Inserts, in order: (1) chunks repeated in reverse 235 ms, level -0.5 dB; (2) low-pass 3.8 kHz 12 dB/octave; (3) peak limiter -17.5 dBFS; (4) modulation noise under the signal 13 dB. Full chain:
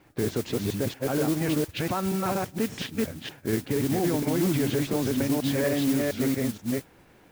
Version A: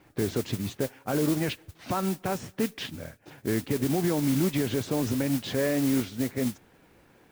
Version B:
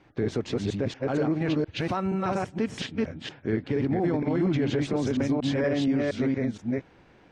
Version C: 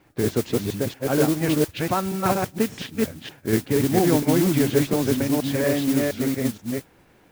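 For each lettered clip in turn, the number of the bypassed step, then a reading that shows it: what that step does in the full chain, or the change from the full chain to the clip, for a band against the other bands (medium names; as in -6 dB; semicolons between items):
1, momentary loudness spread change +3 LU; 4, 8 kHz band -11.5 dB; 3, mean gain reduction 2.5 dB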